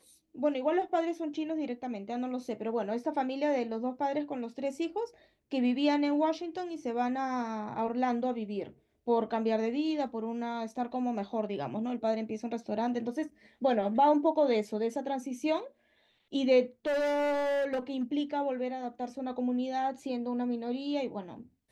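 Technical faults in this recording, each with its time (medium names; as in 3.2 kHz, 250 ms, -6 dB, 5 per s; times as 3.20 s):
16.86–18.04 s: clipped -27 dBFS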